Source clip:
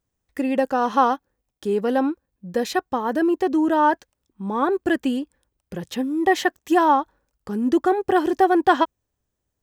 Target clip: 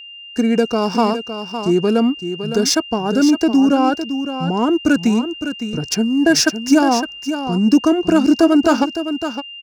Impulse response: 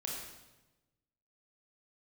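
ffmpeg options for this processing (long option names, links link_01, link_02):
-filter_complex "[0:a]agate=range=-33dB:threshold=-40dB:ratio=3:detection=peak,highshelf=frequency=4800:width_type=q:width=3:gain=9,acrossover=split=570|1400[link_01][link_02][link_03];[link_02]acompressor=threshold=-35dB:ratio=6[link_04];[link_01][link_04][link_03]amix=inputs=3:normalize=0,asetrate=38170,aresample=44100,atempo=1.15535,adynamicsmooth=sensitivity=5.5:basefreq=3900,aeval=exprs='val(0)+0.00891*sin(2*PI*2800*n/s)':channel_layout=same,asplit=2[link_05][link_06];[link_06]aecho=0:1:560:0.335[link_07];[link_05][link_07]amix=inputs=2:normalize=0,volume=7dB"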